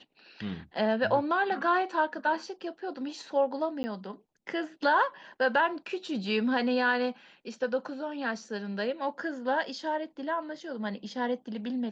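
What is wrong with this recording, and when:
3.83–3.84 gap 10 ms

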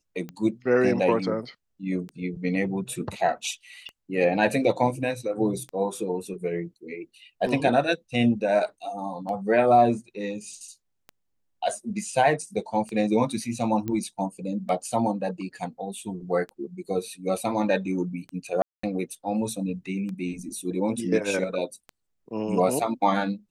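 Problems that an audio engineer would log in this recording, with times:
tick 33 1/3 rpm -24 dBFS
13.88 pop -18 dBFS
18.62–18.83 gap 0.214 s

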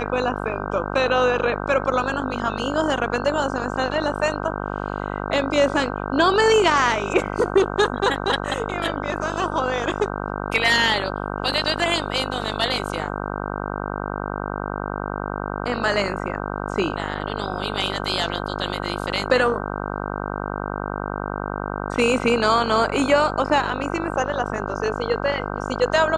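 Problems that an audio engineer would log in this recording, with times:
buzz 50 Hz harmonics 31 -28 dBFS

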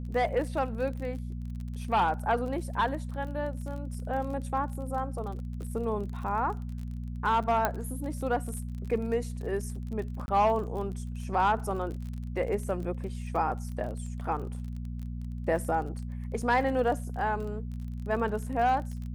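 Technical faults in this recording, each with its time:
crackle 32/s -37 dBFS
hum 60 Hz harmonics 4 -36 dBFS
7.65 pop -12 dBFS
10.26–10.28 gap 21 ms
16.42 gap 3.9 ms

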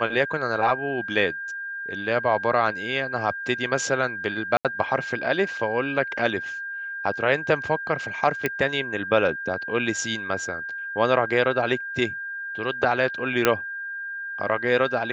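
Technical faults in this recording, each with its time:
tone 1600 Hz -30 dBFS
4.57–4.65 gap 77 ms
8.46 pop -9 dBFS
13.45 pop -3 dBFS

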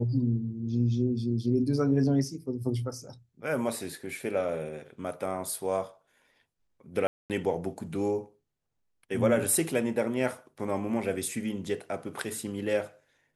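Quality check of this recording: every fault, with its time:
7.07–7.3 gap 0.228 s

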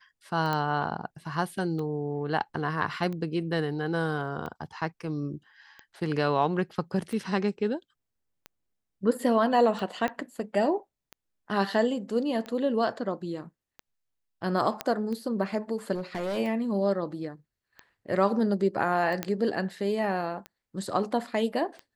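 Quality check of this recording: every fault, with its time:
tick 45 rpm
0.53 pop -16 dBFS
10.08 pop -18 dBFS
14.81 pop -13 dBFS
15.94–16.38 clipped -27.5 dBFS
19.23 pop -13 dBFS

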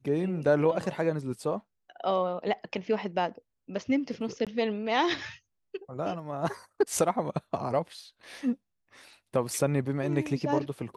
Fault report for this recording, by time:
4.45–4.47 gap 17 ms

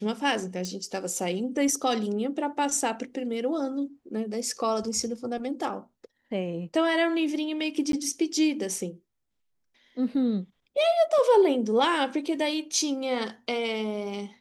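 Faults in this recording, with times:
0.65 pop -20 dBFS
7.92–7.93 gap 12 ms

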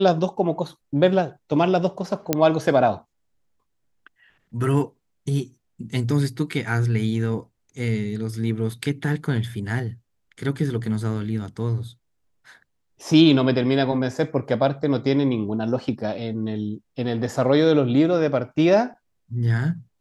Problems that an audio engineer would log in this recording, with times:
2.33 pop -4 dBFS

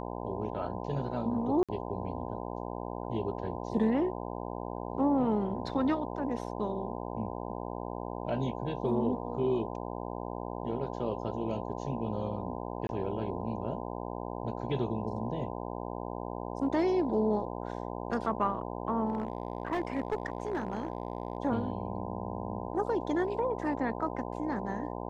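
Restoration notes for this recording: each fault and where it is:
buzz 60 Hz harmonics 17 -38 dBFS
1.63–1.69 gap 56 ms
12.87–12.89 gap 21 ms
19.1–21.38 clipped -26 dBFS

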